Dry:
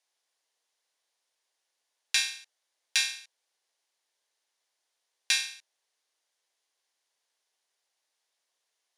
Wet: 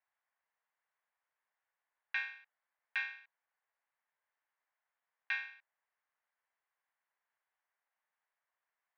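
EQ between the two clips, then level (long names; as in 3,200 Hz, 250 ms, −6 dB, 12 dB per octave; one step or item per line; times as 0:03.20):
high-pass filter 940 Hz 12 dB per octave
low-pass filter 1,900 Hz 24 dB per octave
+1.0 dB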